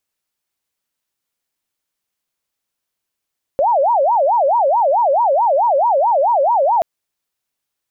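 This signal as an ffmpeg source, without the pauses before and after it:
-f lavfi -i "aevalsrc='0.282*sin(2*PI*(751.5*t-214.5/(2*PI*4.6)*sin(2*PI*4.6*t)))':d=3.23:s=44100"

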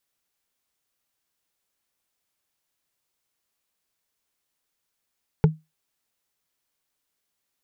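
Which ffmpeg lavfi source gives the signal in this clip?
-f lavfi -i "aevalsrc='0.355*pow(10,-3*t/0.21)*sin(2*PI*157*t)+0.188*pow(10,-3*t/0.062)*sin(2*PI*432.8*t)+0.1*pow(10,-3*t/0.028)*sin(2*PI*848.4*t)+0.0531*pow(10,-3*t/0.015)*sin(2*PI*1402.5*t)+0.0282*pow(10,-3*t/0.009)*sin(2*PI*2094.4*t)':d=0.45:s=44100"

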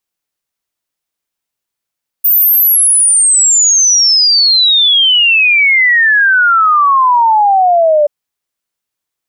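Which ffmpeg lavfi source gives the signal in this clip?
-f lavfi -i "aevalsrc='0.531*clip(min(t,5.83-t)/0.01,0,1)*sin(2*PI*15000*5.83/log(580/15000)*(exp(log(580/15000)*t/5.83)-1))':d=5.83:s=44100"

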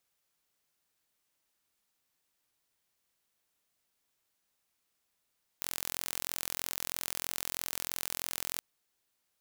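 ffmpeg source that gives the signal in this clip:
-f lavfi -i "aevalsrc='0.398*eq(mod(n,1023),0)':d=2.98:s=44100"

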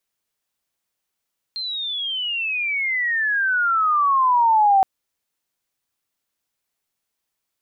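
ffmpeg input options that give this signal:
-f lavfi -i "aevalsrc='pow(10,(-25+13.5*t/3.27)/20)*sin(2*PI*4200*3.27/log(760/4200)*(exp(log(760/4200)*t/3.27)-1))':d=3.27:s=44100"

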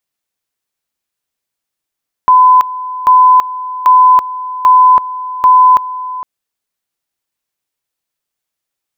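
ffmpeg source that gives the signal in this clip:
-f lavfi -i "aevalsrc='pow(10,(-2.5-16*gte(mod(t,0.79),0.33))/20)*sin(2*PI*1010*t)':d=3.95:s=44100"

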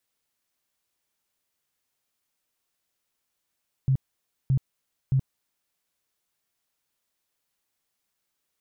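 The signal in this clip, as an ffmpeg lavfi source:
-f lavfi -i "aevalsrc='0.126*sin(2*PI*133*mod(t,0.62))*lt(mod(t,0.62),10/133)':d=1.86:s=44100"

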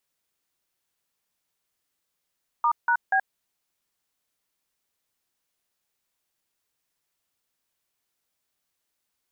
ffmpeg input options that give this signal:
-f lavfi -i "aevalsrc='0.0891*clip(min(mod(t,0.241),0.076-mod(t,0.241))/0.002,0,1)*(eq(floor(t/0.241),0)*(sin(2*PI*941*mod(t,0.241))+sin(2*PI*1209*mod(t,0.241)))+eq(floor(t/0.241),1)*(sin(2*PI*941*mod(t,0.241))+sin(2*PI*1477*mod(t,0.241)))+eq(floor(t/0.241),2)*(sin(2*PI*770*mod(t,0.241))+sin(2*PI*1633*mod(t,0.241))))':d=0.723:s=44100"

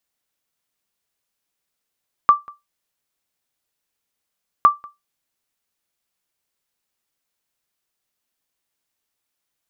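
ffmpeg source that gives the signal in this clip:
-f lavfi -i "aevalsrc='0.708*(sin(2*PI*1170*mod(t,2.36))*exp(-6.91*mod(t,2.36)/0.19)+0.0501*sin(2*PI*1170*max(mod(t,2.36)-0.19,0))*exp(-6.91*max(mod(t,2.36)-0.19,0)/0.19))':d=4.72:s=44100"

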